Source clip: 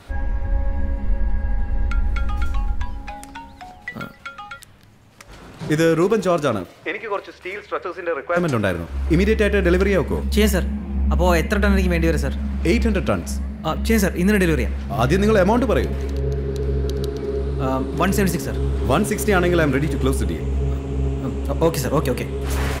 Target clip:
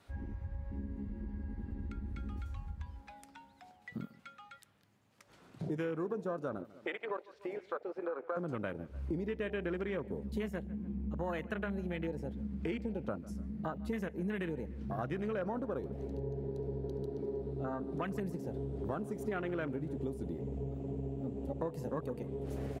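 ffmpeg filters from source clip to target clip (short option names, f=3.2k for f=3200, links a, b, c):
-filter_complex "[0:a]highpass=120,afwtdn=0.0631,asplit=2[a][b];[b]adelay=147,lowpass=f=2.6k:p=1,volume=-23.5dB,asplit=2[c][d];[d]adelay=147,lowpass=f=2.6k:p=1,volume=0.38[e];[c][e]amix=inputs=2:normalize=0[f];[a][f]amix=inputs=2:normalize=0,acompressor=threshold=-35dB:ratio=4,volume=-2.5dB"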